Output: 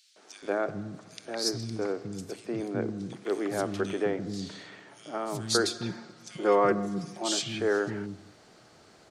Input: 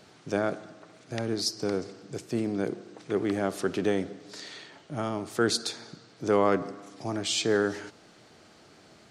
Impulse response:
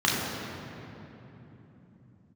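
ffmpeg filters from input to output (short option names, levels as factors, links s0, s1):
-filter_complex "[0:a]asettb=1/sr,asplit=3[s0][s1][s2];[s0]atrim=end=5.474[s3];[s1]atrim=start=5.47:end=7.18,asetpts=PTS-STARTPTS,afade=t=in:d=0.004:c=qsin,afade=t=out:st=1.706:d=0.004:c=qsin,aecho=1:1:5.6:0.74,atrim=end_sample=75411[s4];[s2]atrim=start=7.176[s5];[s3][s4]acrossfade=d=0.004:c1=hsin:c2=qsin[s6];[s6][s5]acrossfade=d=0.004:c1=qsin:c2=hsin,acrossover=split=260|2800[s7][s8][s9];[s8]adelay=160[s10];[s7]adelay=420[s11];[s11][s10][s9]amix=inputs=3:normalize=0"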